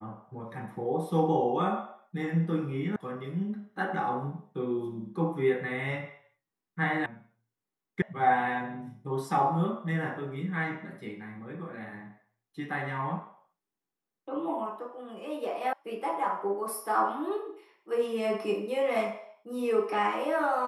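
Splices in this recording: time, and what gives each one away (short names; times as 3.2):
2.96 sound cut off
7.06 sound cut off
8.02 sound cut off
15.73 sound cut off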